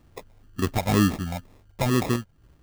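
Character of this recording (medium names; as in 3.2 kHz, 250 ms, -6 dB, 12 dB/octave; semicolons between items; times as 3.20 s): phasing stages 4, 2.1 Hz, lowest notch 310–2400 Hz; aliases and images of a low sample rate 1.5 kHz, jitter 0%; random-step tremolo 3.7 Hz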